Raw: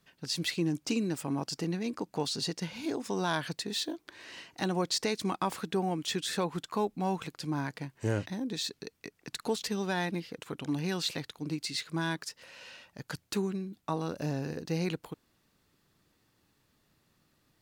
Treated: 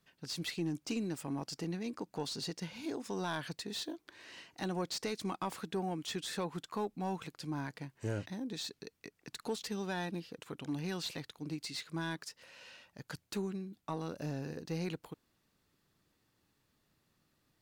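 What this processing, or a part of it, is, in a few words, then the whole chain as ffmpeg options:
saturation between pre-emphasis and de-emphasis: -filter_complex "[0:a]asettb=1/sr,asplit=3[link_01][link_02][link_03];[link_01]atrim=end=9.964[link_04];[link_02]atrim=start=9.96:end=10.37,asetpts=PTS-STARTPTS,afade=type=in:duration=0.004:curve=qsin,afade=type=out:start_time=0.406:duration=0.004:curve=qsin,bandreject=frequency=2100:width=5.5[link_05];[link_03]atrim=start=10.366[link_06];[link_04][link_05]acrossfade=duration=0.004:curve1=hsin:curve2=qsin[link_07];[link_07][link_06]acrossfade=duration=0.004:curve1=qsin:curve2=hsin,highshelf=frequency=2400:gain=10,asoftclip=type=tanh:threshold=-20dB,highshelf=frequency=2400:gain=-10,volume=-5dB"

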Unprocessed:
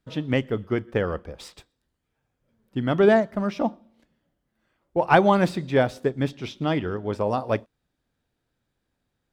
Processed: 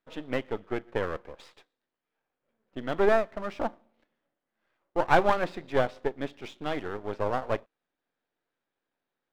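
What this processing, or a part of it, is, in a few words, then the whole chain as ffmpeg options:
crystal radio: -af "highpass=370,lowpass=3000,aeval=exprs='if(lt(val(0),0),0.251*val(0),val(0))':channel_layout=same"

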